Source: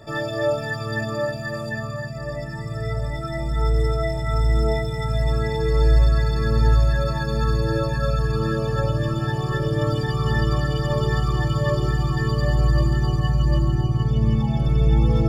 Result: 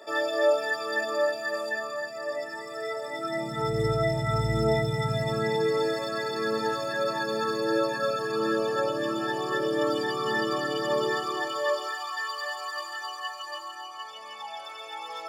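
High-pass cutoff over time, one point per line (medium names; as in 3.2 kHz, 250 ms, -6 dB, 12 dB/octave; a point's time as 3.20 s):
high-pass 24 dB/octave
3.04 s 360 Hz
3.90 s 94 Hz
4.81 s 94 Hz
5.98 s 260 Hz
11.05 s 260 Hz
12.14 s 790 Hz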